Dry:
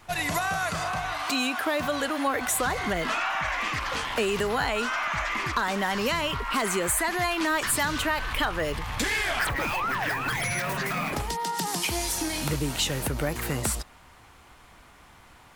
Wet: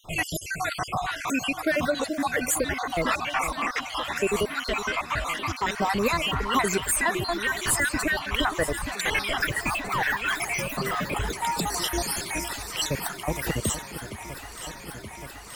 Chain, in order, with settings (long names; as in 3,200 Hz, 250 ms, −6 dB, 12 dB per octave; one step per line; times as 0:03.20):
time-frequency cells dropped at random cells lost 60%
reverb reduction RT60 0.61 s
delay that swaps between a low-pass and a high-pass 463 ms, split 890 Hz, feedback 87%, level −11 dB
level +4.5 dB